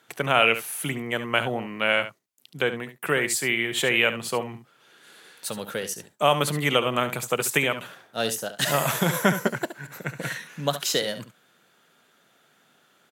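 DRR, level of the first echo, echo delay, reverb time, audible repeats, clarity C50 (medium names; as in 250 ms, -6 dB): no reverb, -11.5 dB, 70 ms, no reverb, 1, no reverb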